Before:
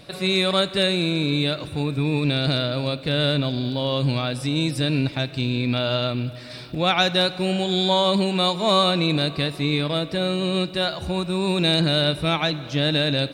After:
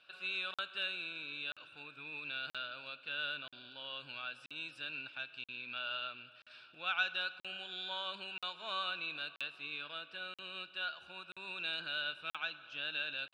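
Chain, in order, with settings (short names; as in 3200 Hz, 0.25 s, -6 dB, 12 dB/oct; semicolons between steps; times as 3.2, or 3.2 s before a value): double band-pass 2000 Hz, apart 0.83 oct; crackling interface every 0.98 s, samples 2048, zero, from 0.54; gain -6.5 dB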